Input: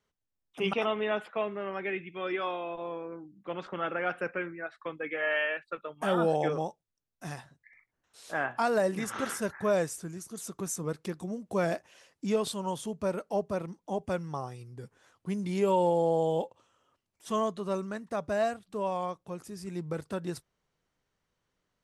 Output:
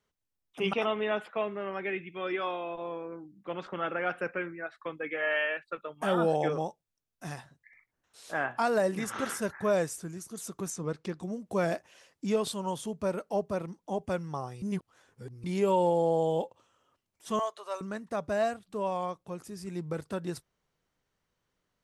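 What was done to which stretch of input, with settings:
10.7–11.23 LPF 6400 Hz
14.62–15.44 reverse
17.39–17.81 HPF 590 Hz 24 dB/oct

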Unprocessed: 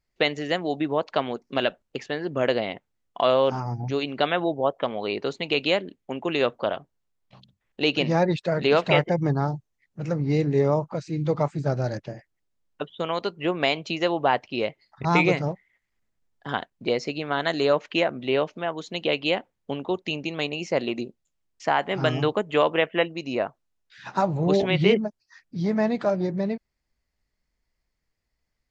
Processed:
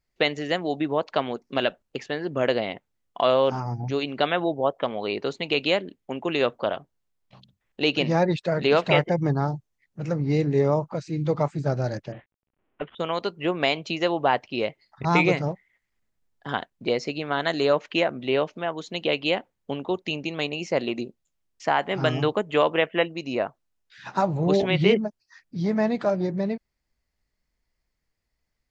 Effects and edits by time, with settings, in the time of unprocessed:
12.12–12.95 CVSD 16 kbps

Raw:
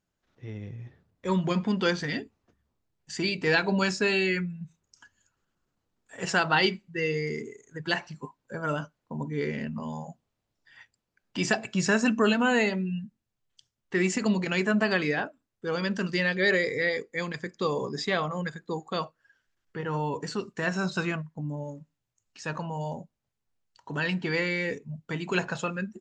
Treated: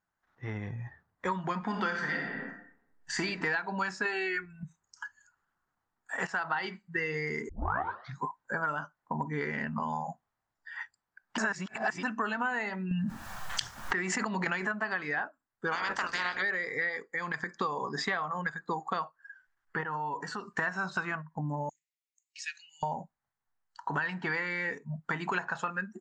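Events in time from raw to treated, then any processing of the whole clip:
1.6–3.21 reverb throw, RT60 1 s, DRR 2 dB
4.05–4.63 comb 2.7 ms, depth 77%
6.27–6.74 fade in, from -18.5 dB
7.49 tape start 0.75 s
11.38–12.03 reverse
12.91–14.72 fast leveller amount 100%
15.71–16.41 spectral limiter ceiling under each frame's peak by 28 dB
17.07–17.56 compressor, threshold -35 dBFS
19.83–20.57 compressor 3:1, threshold -42 dBFS
21.69–22.83 elliptic high-pass 2200 Hz, stop band 50 dB
whole clip: spectral noise reduction 10 dB; band shelf 1200 Hz +12.5 dB; compressor 8:1, threshold -31 dBFS; gain +1.5 dB

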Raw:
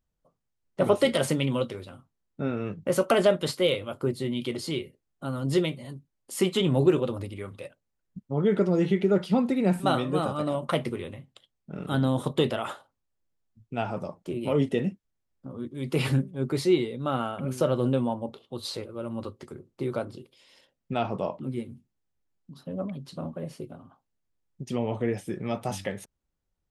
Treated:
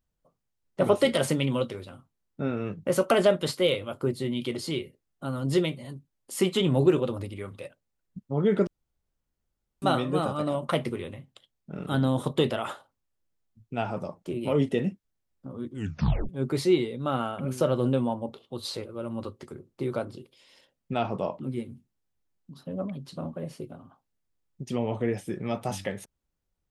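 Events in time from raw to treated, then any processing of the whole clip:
8.67–9.82 room tone
15.71 tape stop 0.58 s

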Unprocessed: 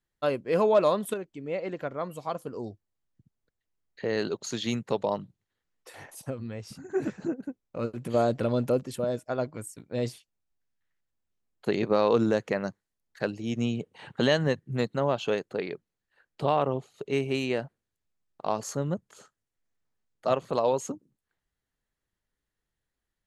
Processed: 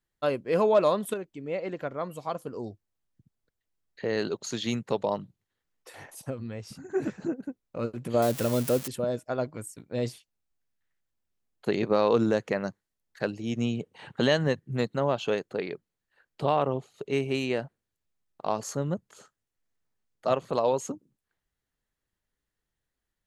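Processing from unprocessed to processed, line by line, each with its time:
8.22–8.88 switching spikes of -22.5 dBFS

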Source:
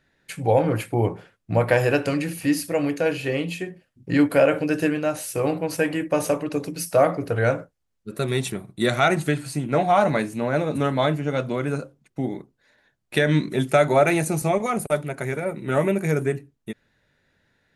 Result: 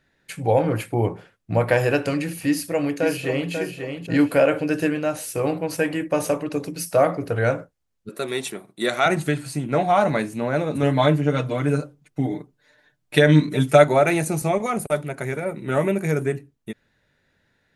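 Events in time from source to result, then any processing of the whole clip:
2.48–3.52 echo throw 0.54 s, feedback 35%, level -6.5 dB
8.09–9.06 HPF 300 Hz
10.82–13.84 comb 6.7 ms, depth 91%

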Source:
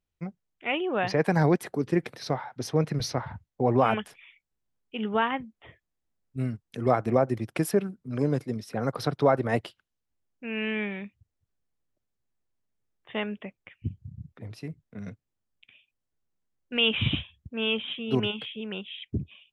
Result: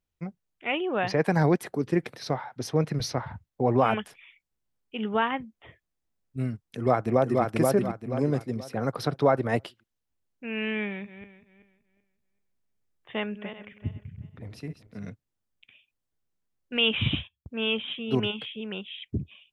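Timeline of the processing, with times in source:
6.69–7.43 echo throw 0.48 s, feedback 35%, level -2 dB
10.86–15.1 regenerating reverse delay 0.191 s, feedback 46%, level -10.5 dB
16.81–17.47 gate -49 dBFS, range -21 dB

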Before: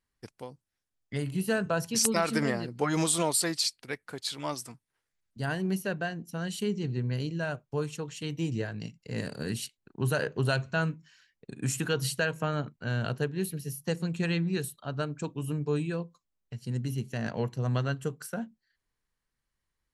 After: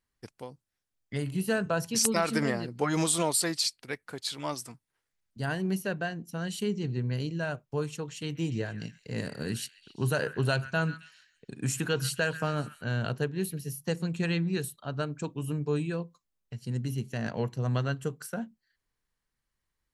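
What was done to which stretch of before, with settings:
8.07–12.84 delay with a stepping band-pass 0.134 s, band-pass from 1700 Hz, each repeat 0.7 oct, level -11.5 dB

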